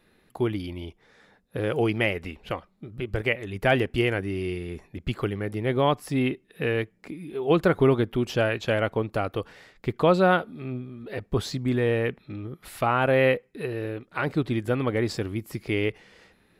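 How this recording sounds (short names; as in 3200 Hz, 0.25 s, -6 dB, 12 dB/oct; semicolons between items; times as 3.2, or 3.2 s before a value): noise floor -64 dBFS; spectral tilt -5.0 dB/oct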